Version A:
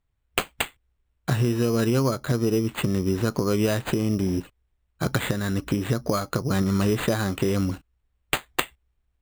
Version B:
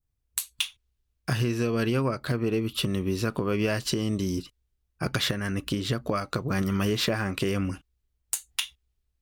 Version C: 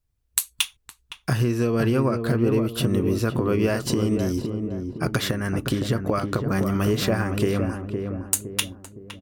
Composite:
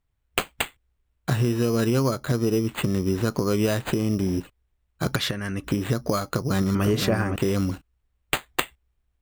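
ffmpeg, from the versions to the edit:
-filter_complex "[0:a]asplit=3[s0][s1][s2];[s0]atrim=end=5.162[s3];[1:a]atrim=start=5.158:end=5.642[s4];[s1]atrim=start=5.638:end=6.752[s5];[2:a]atrim=start=6.748:end=7.362[s6];[s2]atrim=start=7.358[s7];[s3][s4]acrossfade=d=0.004:c1=hsin:c2=hsin[s8];[s8][s5]acrossfade=d=0.004:c1=hsin:c2=hsin[s9];[s9][s6]acrossfade=d=0.004:c1=hsin:c2=hsin[s10];[s10][s7]acrossfade=d=0.004:c1=hsin:c2=hsin"

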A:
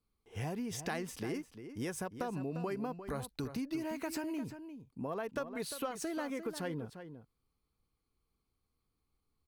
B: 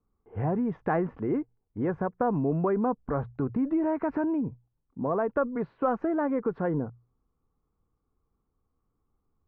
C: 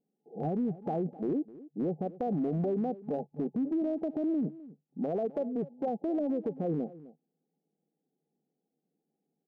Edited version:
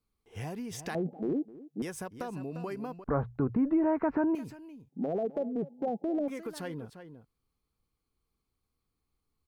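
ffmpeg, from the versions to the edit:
-filter_complex "[2:a]asplit=2[s0][s1];[0:a]asplit=4[s2][s3][s4][s5];[s2]atrim=end=0.952[s6];[s0]atrim=start=0.948:end=1.822[s7];[s3]atrim=start=1.818:end=3.042[s8];[1:a]atrim=start=3.038:end=4.352[s9];[s4]atrim=start=4.348:end=4.892[s10];[s1]atrim=start=4.888:end=6.282[s11];[s5]atrim=start=6.278[s12];[s6][s7]acrossfade=d=0.004:c1=hsin:c2=hsin[s13];[s13][s8]acrossfade=d=0.004:c1=hsin:c2=hsin[s14];[s14][s9]acrossfade=d=0.004:c1=hsin:c2=hsin[s15];[s15][s10]acrossfade=d=0.004:c1=hsin:c2=hsin[s16];[s16][s11]acrossfade=d=0.004:c1=hsin:c2=hsin[s17];[s17][s12]acrossfade=d=0.004:c1=hsin:c2=hsin"

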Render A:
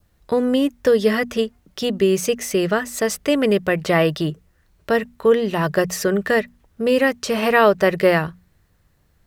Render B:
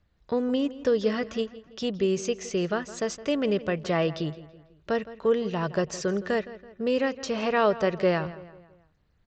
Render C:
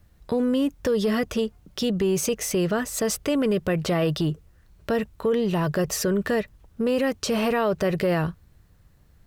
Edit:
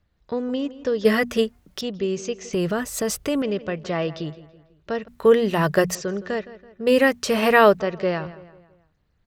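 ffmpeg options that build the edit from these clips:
-filter_complex "[0:a]asplit=3[s0][s1][s2];[1:a]asplit=5[s3][s4][s5][s6][s7];[s3]atrim=end=1.052[s8];[s0]atrim=start=1.048:end=1.812[s9];[s4]atrim=start=1.808:end=2.532[s10];[2:a]atrim=start=2.528:end=3.422[s11];[s5]atrim=start=3.418:end=5.082[s12];[s1]atrim=start=5.078:end=5.952[s13];[s6]atrim=start=5.948:end=6.872[s14];[s2]atrim=start=6.868:end=7.802[s15];[s7]atrim=start=7.798[s16];[s8][s9]acrossfade=d=0.004:c1=hsin:c2=hsin[s17];[s17][s10]acrossfade=d=0.004:c1=hsin:c2=hsin[s18];[s18][s11]acrossfade=d=0.004:c1=hsin:c2=hsin[s19];[s19][s12]acrossfade=d=0.004:c1=hsin:c2=hsin[s20];[s20][s13]acrossfade=d=0.004:c1=hsin:c2=hsin[s21];[s21][s14]acrossfade=d=0.004:c1=hsin:c2=hsin[s22];[s22][s15]acrossfade=d=0.004:c1=hsin:c2=hsin[s23];[s23][s16]acrossfade=d=0.004:c1=hsin:c2=hsin"

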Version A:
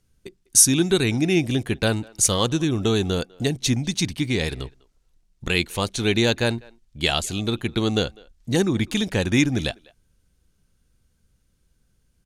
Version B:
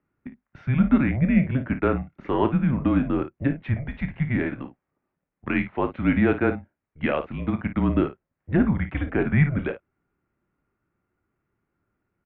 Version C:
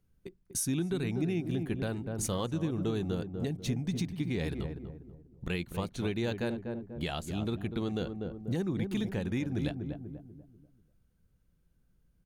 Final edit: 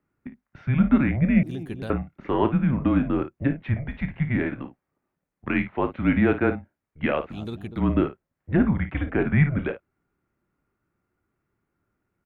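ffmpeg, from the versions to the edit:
-filter_complex "[2:a]asplit=2[s0][s1];[1:a]asplit=3[s2][s3][s4];[s2]atrim=end=1.432[s5];[s0]atrim=start=1.428:end=1.902[s6];[s3]atrim=start=1.898:end=7.39[s7];[s1]atrim=start=7.29:end=7.83[s8];[s4]atrim=start=7.73[s9];[s5][s6]acrossfade=d=0.004:c1=hsin:c2=hsin[s10];[s10][s7]acrossfade=d=0.004:c1=hsin:c2=hsin[s11];[s11][s8]acrossfade=d=0.1:c1=tri:c2=tri[s12];[s12][s9]acrossfade=d=0.1:c1=tri:c2=tri"

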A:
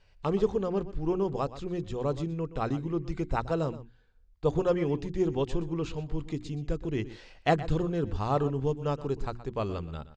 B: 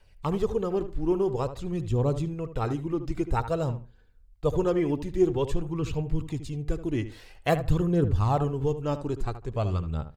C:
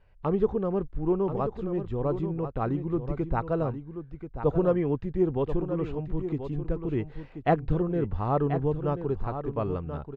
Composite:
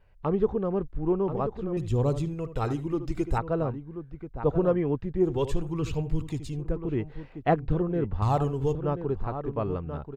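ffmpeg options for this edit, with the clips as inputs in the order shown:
-filter_complex "[1:a]asplit=3[s0][s1][s2];[2:a]asplit=4[s3][s4][s5][s6];[s3]atrim=end=1.772[s7];[s0]atrim=start=1.768:end=3.382[s8];[s4]atrim=start=3.378:end=5.42[s9];[s1]atrim=start=5.18:end=6.74[s10];[s5]atrim=start=6.5:end=8.222[s11];[s2]atrim=start=8.218:end=8.752[s12];[s6]atrim=start=8.748[s13];[s7][s8]acrossfade=d=0.004:c1=hsin:c2=hsin[s14];[s14][s9]acrossfade=d=0.004:c1=hsin:c2=hsin[s15];[s15][s10]acrossfade=d=0.24:c1=tri:c2=tri[s16];[s16][s11]acrossfade=d=0.24:c1=tri:c2=tri[s17];[s17][s12]acrossfade=d=0.004:c1=hsin:c2=hsin[s18];[s18][s13]acrossfade=d=0.004:c1=hsin:c2=hsin"

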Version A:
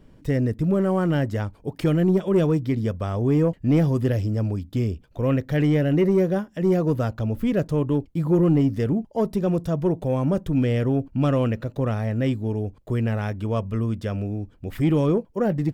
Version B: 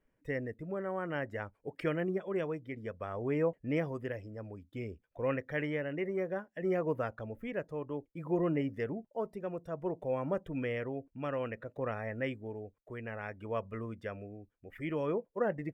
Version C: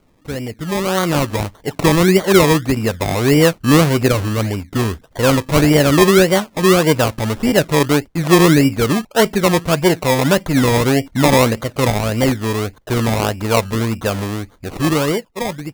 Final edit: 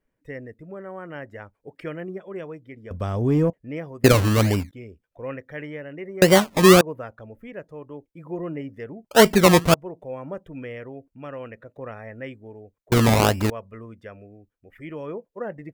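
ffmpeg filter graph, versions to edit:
-filter_complex "[2:a]asplit=4[s0][s1][s2][s3];[1:a]asplit=6[s4][s5][s6][s7][s8][s9];[s4]atrim=end=2.912[s10];[0:a]atrim=start=2.908:end=3.502[s11];[s5]atrim=start=3.498:end=4.042[s12];[s0]atrim=start=4.038:end=4.712[s13];[s6]atrim=start=4.708:end=6.222[s14];[s1]atrim=start=6.218:end=6.812[s15];[s7]atrim=start=6.808:end=9.112[s16];[s2]atrim=start=9.108:end=9.742[s17];[s8]atrim=start=9.738:end=12.922[s18];[s3]atrim=start=12.918:end=13.502[s19];[s9]atrim=start=13.498[s20];[s10][s11]acrossfade=d=0.004:c1=hsin:c2=hsin[s21];[s21][s12]acrossfade=d=0.004:c1=hsin:c2=hsin[s22];[s22][s13]acrossfade=d=0.004:c1=hsin:c2=hsin[s23];[s23][s14]acrossfade=d=0.004:c1=hsin:c2=hsin[s24];[s24][s15]acrossfade=d=0.004:c1=hsin:c2=hsin[s25];[s25][s16]acrossfade=d=0.004:c1=hsin:c2=hsin[s26];[s26][s17]acrossfade=d=0.004:c1=hsin:c2=hsin[s27];[s27][s18]acrossfade=d=0.004:c1=hsin:c2=hsin[s28];[s28][s19]acrossfade=d=0.004:c1=hsin:c2=hsin[s29];[s29][s20]acrossfade=d=0.004:c1=hsin:c2=hsin"

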